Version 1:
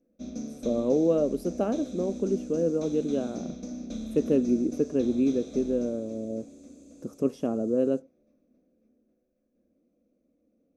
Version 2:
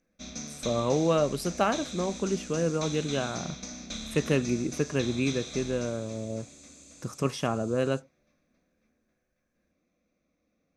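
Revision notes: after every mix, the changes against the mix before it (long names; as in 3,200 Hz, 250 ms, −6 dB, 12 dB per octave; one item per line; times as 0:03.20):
speech +3.5 dB
master: add graphic EQ with 10 bands 125 Hz +10 dB, 250 Hz −10 dB, 500 Hz −7 dB, 1,000 Hz +9 dB, 2,000 Hz +12 dB, 4,000 Hz +9 dB, 8,000 Hz +10 dB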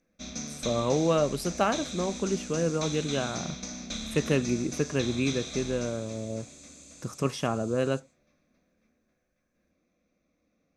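first sound: send on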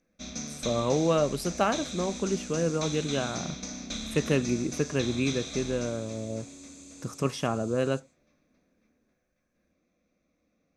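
second sound +11.5 dB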